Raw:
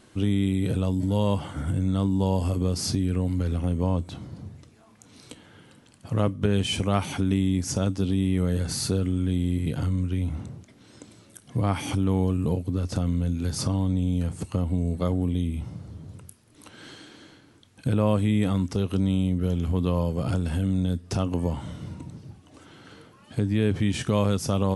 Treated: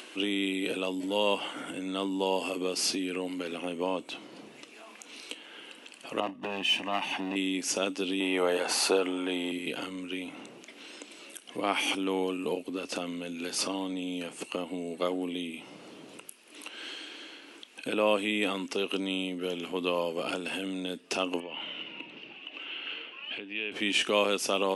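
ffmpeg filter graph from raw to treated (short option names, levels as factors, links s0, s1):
-filter_complex "[0:a]asettb=1/sr,asplit=3[s0][s1][s2];[s0]atrim=end=6.204[s3];[s1]atrim=start=6.2:end=7.36,asetpts=PTS-STARTPTS,afade=t=in:d=0.004:c=qsin,afade=t=out:st=1.156:d=0.004:c=qsin,lowpass=f=2000:p=1,aeval=exprs='clip(val(0),-1,0.0266)':c=same,aecho=1:1:1.1:0.62,atrim=end_sample=51156[s4];[s2]atrim=start=7.356[s5];[s3][s4]acrossfade=d=0.004:c1=hsin:c2=qsin[s6];[s6][s5]acrossfade=d=0.004:c1=qsin:c2=hsin,asettb=1/sr,asplit=3[s7][s8][s9];[s7]atrim=end=8.204[s10];[s8]atrim=start=8.2:end=9.52,asetpts=PTS-STARTPTS,afade=t=in:d=0.004:c=qsin,afade=t=out:st=1.316:d=0.004:c=qsin,highpass=f=220:p=1,equalizer=f=840:t=o:w=1.5:g=15[s11];[s9]atrim=start=9.516[s12];[s10][s11]acrossfade=d=0.004:c1=hsin:c2=qsin[s13];[s13][s12]acrossfade=d=0.004:c1=qsin:c2=hsin,asettb=1/sr,asplit=3[s14][s15][s16];[s14]atrim=end=21.404[s17];[s15]atrim=start=21.4:end=23.72,asetpts=PTS-STARTPTS,afade=t=in:d=0.004:c=qsin,afade=t=out:st=2.316:d=0.004:c=qsin,lowpass=f=2800:t=q:w=4.1,acompressor=threshold=0.0178:ratio=3:attack=3.2:release=140:knee=1:detection=peak[s18];[s16]atrim=start=23.716[s19];[s17][s18]acrossfade=d=0.004:c1=hsin:c2=qsin[s20];[s20][s19]acrossfade=d=0.004:c1=qsin:c2=hsin,highpass=f=300:w=0.5412,highpass=f=300:w=1.3066,equalizer=f=2700:t=o:w=0.59:g=13,acompressor=mode=upward:threshold=0.01:ratio=2.5"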